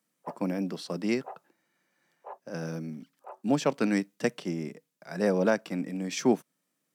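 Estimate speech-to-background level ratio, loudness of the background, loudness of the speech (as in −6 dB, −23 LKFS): 18.5 dB, −48.5 LKFS, −30.0 LKFS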